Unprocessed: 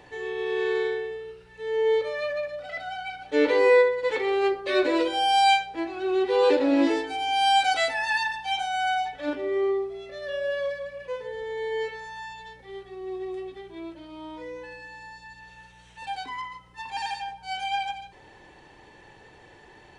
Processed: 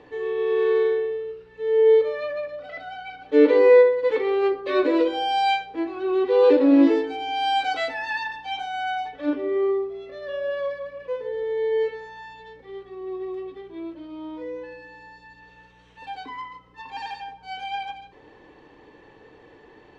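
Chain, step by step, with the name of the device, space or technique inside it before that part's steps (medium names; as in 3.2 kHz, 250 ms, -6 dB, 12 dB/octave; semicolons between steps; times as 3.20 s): inside a cardboard box (low-pass 4.5 kHz 12 dB/octave; small resonant body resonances 290/450/1100 Hz, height 10 dB, ringing for 30 ms); trim -3 dB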